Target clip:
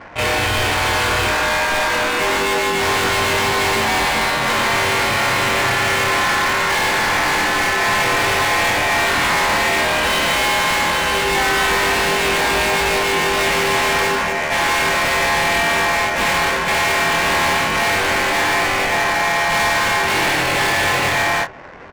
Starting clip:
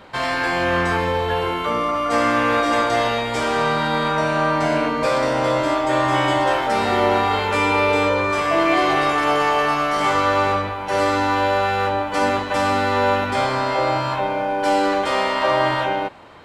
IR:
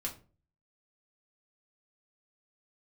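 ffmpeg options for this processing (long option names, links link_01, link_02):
-filter_complex "[0:a]acrossover=split=180|3300[link_01][link_02][link_03];[link_01]acrusher=bits=3:mode=log:mix=0:aa=0.000001[link_04];[link_04][link_02][link_03]amix=inputs=3:normalize=0,lowshelf=frequency=120:width_type=q:width=1.5:gain=-13,acontrast=65,aeval=exprs='val(0)*sin(2*PI*1700*n/s)':channel_layout=same,asetrate=33075,aresample=44100,bandreject=frequency=128.7:width_type=h:width=4,bandreject=frequency=257.4:width_type=h:width=4,bandreject=frequency=386.1:width_type=h:width=4,asplit=3[link_05][link_06][link_07];[link_06]asetrate=29433,aresample=44100,atempo=1.49831,volume=-16dB[link_08];[link_07]asetrate=55563,aresample=44100,atempo=0.793701,volume=-4dB[link_09];[link_05][link_08][link_09]amix=inputs=3:normalize=0,adynamicsmooth=sensitivity=3.5:basefreq=940,asoftclip=type=hard:threshold=-19dB,asplit=2[link_10][link_11];[link_11]adelay=23,volume=-7dB[link_12];[link_10][link_12]amix=inputs=2:normalize=0,volume=3dB"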